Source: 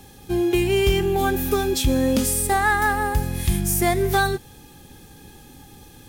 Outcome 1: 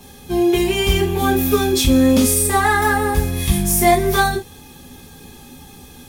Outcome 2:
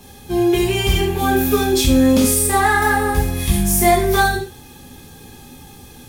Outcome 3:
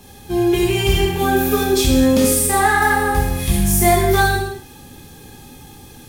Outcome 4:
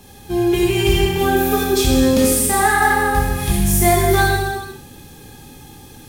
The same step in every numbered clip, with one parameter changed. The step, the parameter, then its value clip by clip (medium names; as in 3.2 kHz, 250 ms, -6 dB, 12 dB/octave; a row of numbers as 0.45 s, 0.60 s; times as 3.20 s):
gated-style reverb, gate: 80 ms, 150 ms, 290 ms, 480 ms